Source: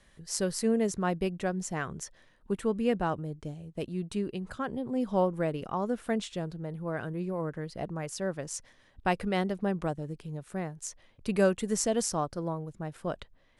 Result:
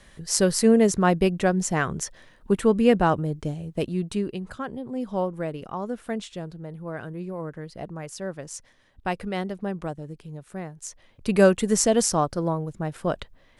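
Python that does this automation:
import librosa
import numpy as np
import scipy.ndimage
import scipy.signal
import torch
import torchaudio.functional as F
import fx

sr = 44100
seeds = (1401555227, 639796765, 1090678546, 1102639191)

y = fx.gain(x, sr, db=fx.line((3.7, 9.5), (4.79, 0.0), (10.72, 0.0), (11.43, 8.0)))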